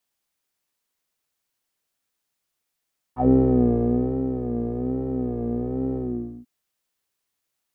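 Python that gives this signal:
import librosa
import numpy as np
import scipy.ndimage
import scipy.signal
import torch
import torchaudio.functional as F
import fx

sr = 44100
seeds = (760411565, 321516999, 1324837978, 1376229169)

y = fx.sub_patch_vibrato(sr, seeds[0], note=47, wave='saw', wave2='square', interval_st=12, detune_cents=22, level2_db=-2.0, sub_db=-8, noise_db=-30.0, kind='lowpass', cutoff_hz=270.0, q=7.1, env_oct=2.0, env_decay_s=0.1, env_sustain_pct=35, attack_ms=116.0, decay_s=0.99, sustain_db=-10.0, release_s=0.48, note_s=2.81, lfo_hz=1.2, vibrato_cents=92)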